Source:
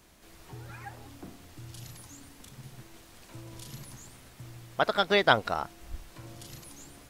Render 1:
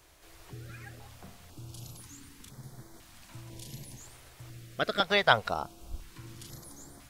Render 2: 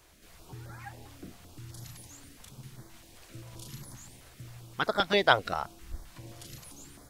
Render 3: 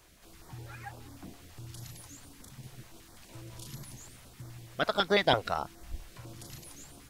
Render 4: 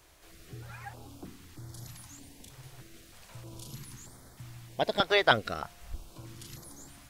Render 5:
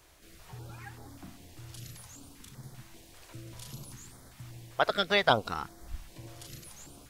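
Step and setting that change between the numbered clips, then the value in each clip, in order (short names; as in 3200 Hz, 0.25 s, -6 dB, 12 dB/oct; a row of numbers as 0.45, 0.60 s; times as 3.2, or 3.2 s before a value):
stepped notch, rate: 2, 7.6, 12, 3.2, 5.1 Hz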